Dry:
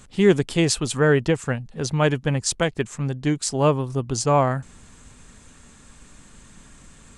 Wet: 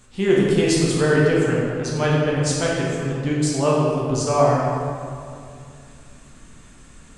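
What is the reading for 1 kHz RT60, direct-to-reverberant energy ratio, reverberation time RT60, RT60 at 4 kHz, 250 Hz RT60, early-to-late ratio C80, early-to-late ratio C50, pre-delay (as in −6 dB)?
2.3 s, −5.5 dB, 2.4 s, 1.5 s, 2.9 s, 0.5 dB, −1.5 dB, 8 ms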